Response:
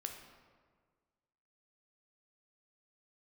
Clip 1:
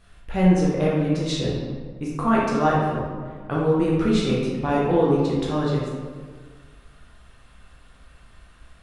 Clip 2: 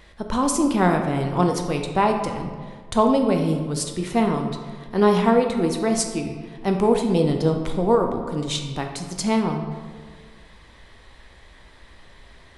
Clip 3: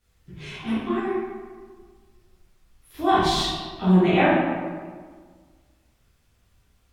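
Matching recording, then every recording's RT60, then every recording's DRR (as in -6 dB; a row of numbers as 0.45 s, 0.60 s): 2; 1.7 s, 1.7 s, 1.6 s; -5.5 dB, 3.5 dB, -13.0 dB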